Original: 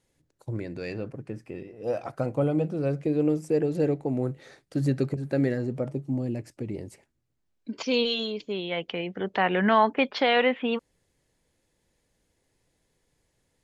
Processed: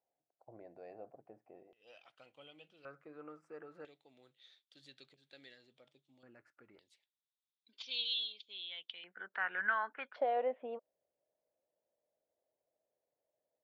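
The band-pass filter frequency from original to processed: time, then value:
band-pass filter, Q 7.8
710 Hz
from 1.73 s 3.1 kHz
from 2.85 s 1.3 kHz
from 3.85 s 3.5 kHz
from 6.23 s 1.4 kHz
from 6.79 s 3.6 kHz
from 9.04 s 1.5 kHz
from 10.16 s 620 Hz

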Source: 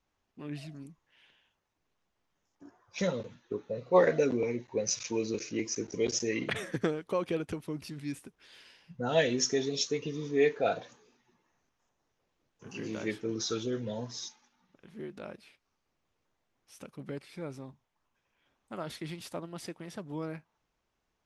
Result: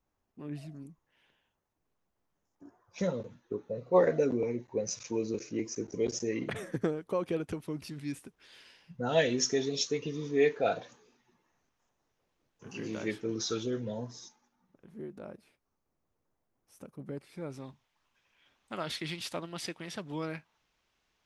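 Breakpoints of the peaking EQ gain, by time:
peaking EQ 3.3 kHz 2.4 oct
6.90 s -8.5 dB
7.70 s -0.5 dB
13.65 s -0.5 dB
14.22 s -12 dB
17.06 s -12 dB
17.50 s -2 dB
17.68 s +9 dB

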